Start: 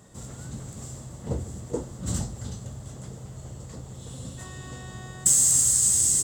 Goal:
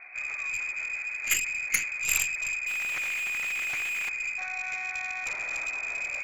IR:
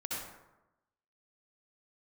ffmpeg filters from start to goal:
-filter_complex "[0:a]lowpass=f=2200:t=q:w=0.5098,lowpass=f=2200:t=q:w=0.6013,lowpass=f=2200:t=q:w=0.9,lowpass=f=2200:t=q:w=2.563,afreqshift=-2600,aemphasis=mode=reproduction:type=50fm,asettb=1/sr,asplit=3[s0][s1][s2];[s0]atrim=end=2.674[s3];[s1]atrim=start=2.67:end=4.09,asetpts=PTS-STARTPTS,afade=t=in:d=0.004:c=qsin,afade=t=out:st=1.416:d=0.004:c=qsin,asplit=2[s4][s5];[s5]highpass=f=720:p=1,volume=70.8,asoftclip=type=tanh:threshold=0.0398[s6];[s4][s6]amix=inputs=2:normalize=0,lowpass=f=1700:p=1,volume=0.501[s7];[s2]atrim=start=4.086[s8];[s3][s7]acrossfade=d=0.004:c1=hsin:c2=qsin[s9];[s9][s8]acrossfade=d=0.004:c1=qsin:c2=hsin,asplit=2[s10][s11];[s11]asoftclip=type=tanh:threshold=0.0447,volume=0.251[s12];[s10][s12]amix=inputs=2:normalize=0,aeval=exprs='0.15*(cos(1*acos(clip(val(0)/0.15,-1,1)))-cos(1*PI/2))+0.0188*(cos(2*acos(clip(val(0)/0.15,-1,1)))-cos(2*PI/2))+0.0376*(cos(3*acos(clip(val(0)/0.15,-1,1)))-cos(3*PI/2))+0.015*(cos(4*acos(clip(val(0)/0.15,-1,1)))-cos(4*PI/2))+0.0335*(cos(7*acos(clip(val(0)/0.15,-1,1)))-cos(7*PI/2))':c=same,crystalizer=i=1:c=0,volume=1.5"

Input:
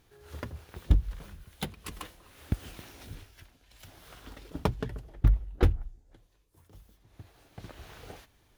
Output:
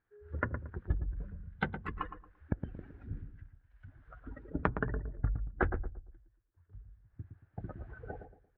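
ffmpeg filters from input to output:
-filter_complex "[0:a]asettb=1/sr,asplit=3[s0][s1][s2];[s0]atrim=end=1.774[s3];[s1]atrim=start=1.77:end=2.83,asetpts=PTS-STARTPTS,afade=t=in:d=0.004:c=qsin,afade=t=out:st=1.056:d=0.004:c=qsin,aeval=exprs='if(lt(val(0),0),0.708*val(0),val(0))':c=same[s4];[s2]atrim=start=2.826[s5];[s3][s4]acrossfade=d=0.004:c1=hsin:c2=qsin[s6];[s6][s5]acrossfade=d=0.004:c1=qsin:c2=hsin,afftdn=nr=24:nf=-42,acompressor=threshold=0.0251:ratio=12,lowpass=f=1600:t=q:w=4.5,asplit=2[s7][s8];[s8]adelay=114,lowpass=f=970:p=1,volume=0.447,asplit=2[s9][s10];[s10]adelay=114,lowpass=f=970:p=1,volume=0.33,asplit=2[s11][s12];[s12]adelay=114,lowpass=f=970:p=1,volume=0.33,asplit=2[s13][s14];[s14]adelay=114,lowpass=f=970:p=1,volume=0.33[s15];[s7][s9][s11][s13][s15]amix=inputs=5:normalize=0,volume=1.5"

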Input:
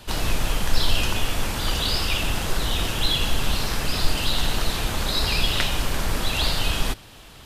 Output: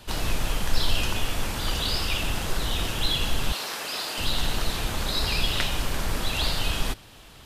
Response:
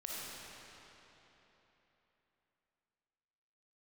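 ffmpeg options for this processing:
-filter_complex "[0:a]asettb=1/sr,asplit=3[s0][s1][s2];[s0]atrim=end=3.524[s3];[s1]atrim=start=3.52:end=4.18,asetpts=PTS-STARTPTS,afade=t=in:d=0.004:c=qsin,afade=t=out:st=0.656:d=0.004:c=qsin,highpass=430[s4];[s2]atrim=start=4.176[s5];[s3][s4]acrossfade=d=0.004:c1=hsin:c2=qsin[s6];[s6][s5]acrossfade=d=0.004:c1=qsin:c2=hsin,volume=0.708"

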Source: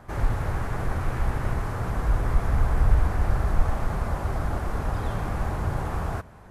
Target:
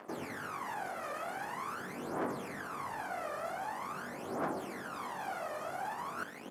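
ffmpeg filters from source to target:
-filter_complex "[0:a]aeval=exprs='sgn(val(0))*max(abs(val(0))-0.00335,0)':c=same,highpass=f=240:w=0.5412,highpass=f=240:w=1.3066,bandreject=f=3800:w=15,asplit=2[s0][s1];[s1]adelay=21,volume=0.668[s2];[s0][s2]amix=inputs=2:normalize=0,alimiter=level_in=1.68:limit=0.0631:level=0:latency=1,volume=0.596,areverse,acompressor=threshold=0.00355:ratio=6,areverse,aphaser=in_gain=1:out_gain=1:delay=1.7:decay=0.71:speed=0.45:type=triangular,volume=2.51"

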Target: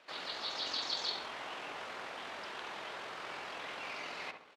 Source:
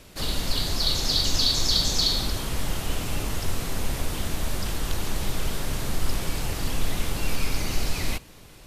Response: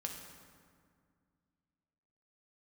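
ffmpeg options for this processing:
-filter_complex "[0:a]atempo=1.9,highpass=720,lowpass=2600,asplit=2[s0][s1];[s1]adelay=67,lowpass=f=1400:p=1,volume=0.562,asplit=2[s2][s3];[s3]adelay=67,lowpass=f=1400:p=1,volume=0.5,asplit=2[s4][s5];[s5]adelay=67,lowpass=f=1400:p=1,volume=0.5,asplit=2[s6][s7];[s7]adelay=67,lowpass=f=1400:p=1,volume=0.5,asplit=2[s8][s9];[s9]adelay=67,lowpass=f=1400:p=1,volume=0.5,asplit=2[s10][s11];[s11]adelay=67,lowpass=f=1400:p=1,volume=0.5[s12];[s0][s2][s4][s6][s8][s10][s12]amix=inputs=7:normalize=0,volume=0.668"

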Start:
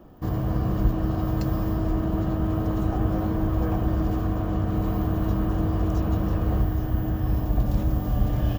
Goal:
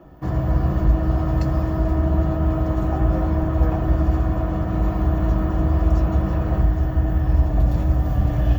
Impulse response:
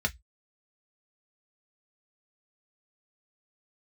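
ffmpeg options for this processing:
-filter_complex "[0:a]asplit=2[s0][s1];[1:a]atrim=start_sample=2205,highshelf=f=3000:g=8[s2];[s1][s2]afir=irnorm=-1:irlink=0,volume=0.355[s3];[s0][s3]amix=inputs=2:normalize=0"

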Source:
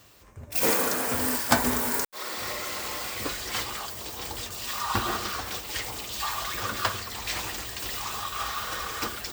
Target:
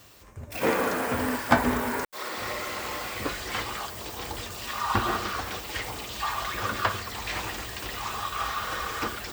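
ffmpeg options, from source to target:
-filter_complex "[0:a]acrossover=split=3000[s0][s1];[s1]acompressor=threshold=0.01:ratio=4:attack=1:release=60[s2];[s0][s2]amix=inputs=2:normalize=0,volume=1.33"

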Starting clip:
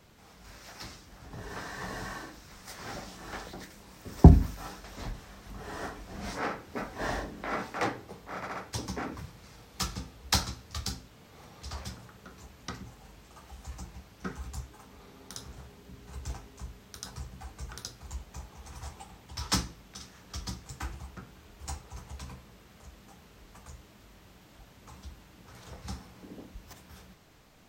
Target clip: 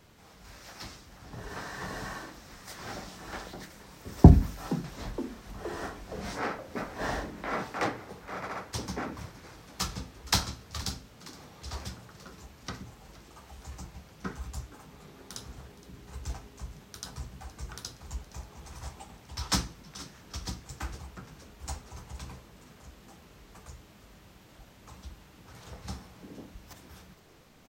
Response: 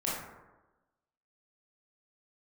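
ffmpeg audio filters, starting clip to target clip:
-filter_complex "[0:a]asplit=2[s0][s1];[s1]asetrate=35002,aresample=44100,atempo=1.25992,volume=0.316[s2];[s0][s2]amix=inputs=2:normalize=0,asplit=7[s3][s4][s5][s6][s7][s8][s9];[s4]adelay=468,afreqshift=90,volume=0.112[s10];[s5]adelay=936,afreqshift=180,volume=0.0716[s11];[s6]adelay=1404,afreqshift=270,volume=0.0457[s12];[s7]adelay=1872,afreqshift=360,volume=0.0295[s13];[s8]adelay=2340,afreqshift=450,volume=0.0188[s14];[s9]adelay=2808,afreqshift=540,volume=0.012[s15];[s3][s10][s11][s12][s13][s14][s15]amix=inputs=7:normalize=0"

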